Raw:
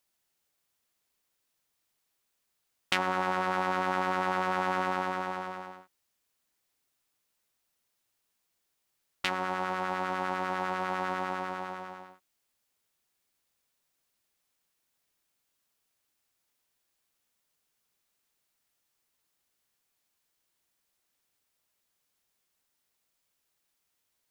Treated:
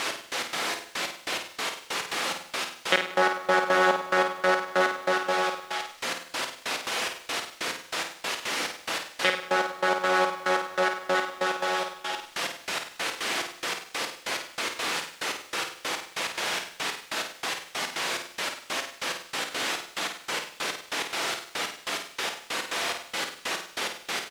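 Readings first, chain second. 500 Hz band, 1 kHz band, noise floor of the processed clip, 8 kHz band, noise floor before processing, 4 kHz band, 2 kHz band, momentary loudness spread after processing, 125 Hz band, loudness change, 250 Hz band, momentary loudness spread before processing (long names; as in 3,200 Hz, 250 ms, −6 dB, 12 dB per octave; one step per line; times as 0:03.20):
+10.0 dB, +5.0 dB, −50 dBFS, +21.0 dB, −79 dBFS, +15.5 dB, +10.5 dB, 8 LU, −1.5 dB, +2.5 dB, +4.5 dB, 11 LU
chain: spike at every zero crossing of −15.5 dBFS
parametric band 530 Hz +12.5 dB 0.36 octaves
notch filter 1,000 Hz, Q 8
comb filter 6 ms, depth 73%
gate pattern "x..x.xx..x..x.." 142 BPM −24 dB
asymmetric clip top −23.5 dBFS
band-pass filter 290–2,800 Hz
on a send: flutter between parallel walls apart 8.8 metres, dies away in 0.45 s
on the sum: feedback echo at a low word length 91 ms, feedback 55%, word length 8 bits, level −15 dB
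level +6.5 dB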